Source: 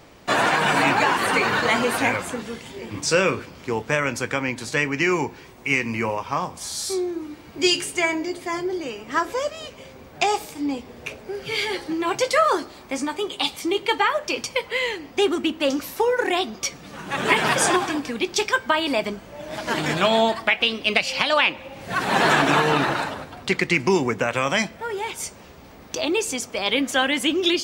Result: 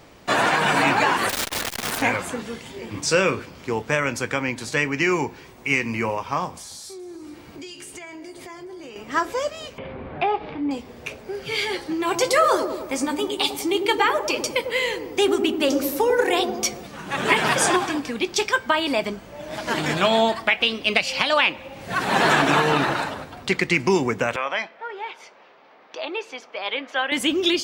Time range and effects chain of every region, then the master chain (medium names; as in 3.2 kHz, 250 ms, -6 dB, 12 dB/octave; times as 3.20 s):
1.29–2.02 s: integer overflow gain 18 dB + transformer saturation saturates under 500 Hz
6.50–8.96 s: compression 12:1, threshold -35 dBFS + echo whose repeats swap between lows and highs 211 ms, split 1.7 kHz, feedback 55%, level -14 dB
9.78–10.71 s: Bessel low-pass 2 kHz, order 8 + upward compressor, threshold -24 dBFS
12.02–16.87 s: treble shelf 8.6 kHz +9.5 dB + feedback echo behind a low-pass 99 ms, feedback 60%, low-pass 660 Hz, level -3.5 dB
24.36–27.12 s: high-pass 600 Hz + distance through air 290 m
whole clip: none